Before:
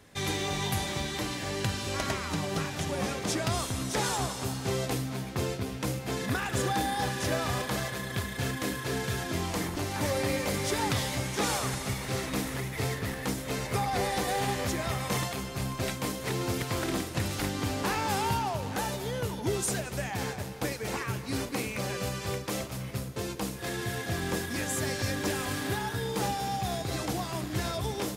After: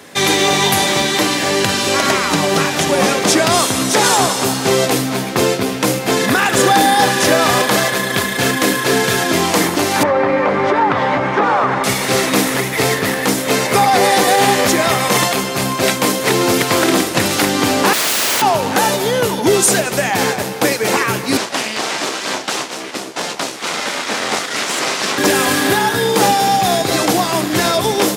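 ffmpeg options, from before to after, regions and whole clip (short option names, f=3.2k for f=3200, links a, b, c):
-filter_complex "[0:a]asettb=1/sr,asplit=3[a][b][c];[a]atrim=end=10.034[d];[b]atrim=start=10.03:end=11.84,asetpts=PTS-STARTPTS,afade=t=in:d=0.004:c=qsin,afade=t=out:st=1.806:d=0.004:c=qsin,lowpass=1.7k,equalizer=f=1.1k:w=0.88:g=7,acompressor=threshold=-28dB:ratio=6:attack=3.2:release=140:knee=1:detection=peak[e];[c]atrim=start=11.836[f];[d][e]acrossfade=d=0.004:c1=hsin:c2=qsin[g];[g][f]acrossfade=d=0.004:c1=qsin:c2=hsin,asettb=1/sr,asplit=3[h][i][j];[h]atrim=end=17.934[k];[i]atrim=start=17.93:end=18.42,asetpts=PTS-STARTPTS,afade=t=in:d=0.004:c=qsin,afade=t=out:st=0.486:d=0.004:c=qsin,lowpass=7k,aeval=exprs='(mod(33.5*val(0)+1,2)-1)/33.5':c=same[l];[j]atrim=start=18.416[m];[k][l]acrossfade=d=0.004:c1=hsin:c2=qsin[n];[n][m]acrossfade=d=0.004:c1=qsin:c2=hsin,asettb=1/sr,asplit=3[o][p][q];[o]atrim=end=21.374[r];[p]atrim=start=21.37:end=25.18,asetpts=PTS-STARTPTS,afade=t=in:d=0.004:c=qsin,afade=t=out:st=3.806:d=0.004:c=qsin,bass=f=250:g=-5,treble=f=4k:g=3,aeval=exprs='abs(val(0))':c=same,highpass=110,lowpass=6.7k[s];[q]atrim=start=25.176[t];[r][s]acrossfade=d=0.004:c1=hsin:c2=qsin[u];[u][t]acrossfade=d=0.004:c1=qsin:c2=hsin,highpass=230,alimiter=level_in=20dB:limit=-1dB:release=50:level=0:latency=1,volume=-1dB"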